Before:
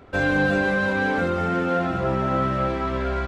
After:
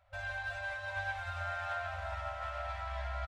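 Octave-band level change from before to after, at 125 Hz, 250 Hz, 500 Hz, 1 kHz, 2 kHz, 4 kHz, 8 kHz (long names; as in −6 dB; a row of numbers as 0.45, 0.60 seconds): −16.5 dB, below −40 dB, −20.5 dB, −13.5 dB, −13.5 dB, −11.5 dB, can't be measured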